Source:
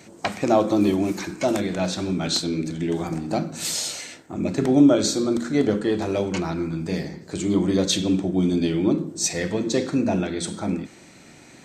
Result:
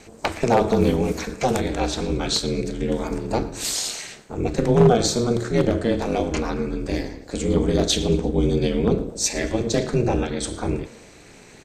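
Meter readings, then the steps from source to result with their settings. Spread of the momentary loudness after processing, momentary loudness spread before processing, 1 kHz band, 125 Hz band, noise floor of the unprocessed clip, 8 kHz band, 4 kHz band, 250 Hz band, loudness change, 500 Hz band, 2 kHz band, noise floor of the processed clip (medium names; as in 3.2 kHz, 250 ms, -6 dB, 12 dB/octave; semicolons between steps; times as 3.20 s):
9 LU, 9 LU, +3.5 dB, +4.0 dB, -48 dBFS, +1.0 dB, +1.0 dB, -2.0 dB, +0.5 dB, +3.0 dB, +1.5 dB, -47 dBFS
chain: one-sided wavefolder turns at -10.5 dBFS; ring modulator 120 Hz; frequency-shifting echo 113 ms, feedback 46%, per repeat +76 Hz, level -20.5 dB; trim +4 dB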